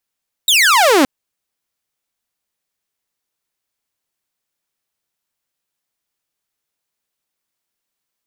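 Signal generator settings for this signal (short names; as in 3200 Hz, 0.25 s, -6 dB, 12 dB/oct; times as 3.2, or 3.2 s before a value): laser zap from 3900 Hz, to 250 Hz, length 0.57 s saw, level -6 dB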